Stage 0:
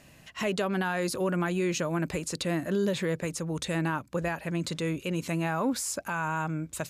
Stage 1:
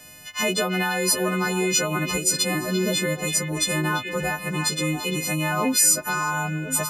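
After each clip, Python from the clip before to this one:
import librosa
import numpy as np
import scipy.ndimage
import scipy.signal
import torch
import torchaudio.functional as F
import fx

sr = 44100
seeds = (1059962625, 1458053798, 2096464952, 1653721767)

y = fx.freq_snap(x, sr, grid_st=3)
y = fx.echo_stepped(y, sr, ms=343, hz=2500.0, octaves=-1.4, feedback_pct=70, wet_db=-3)
y = y * librosa.db_to_amplitude(4.0)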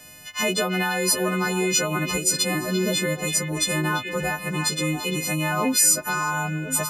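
y = x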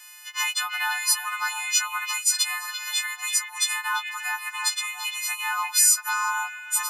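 y = scipy.signal.sosfilt(scipy.signal.butter(16, 820.0, 'highpass', fs=sr, output='sos'), x)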